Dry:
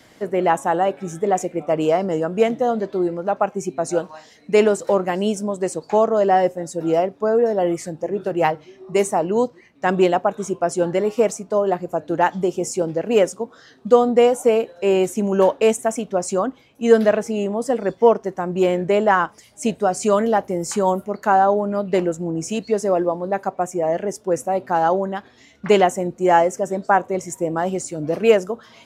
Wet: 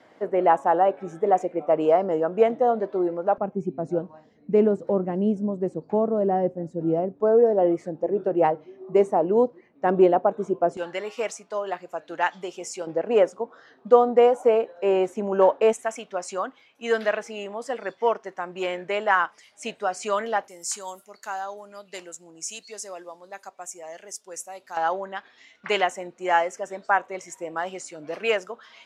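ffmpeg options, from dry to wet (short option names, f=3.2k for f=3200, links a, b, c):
-af "asetnsamples=n=441:p=0,asendcmd='3.38 bandpass f 190;7.2 bandpass f 450;10.77 bandpass f 2500;12.87 bandpass f 860;15.73 bandpass f 2100;20.48 bandpass f 7000;24.77 bandpass f 2200',bandpass=f=710:t=q:w=0.73:csg=0"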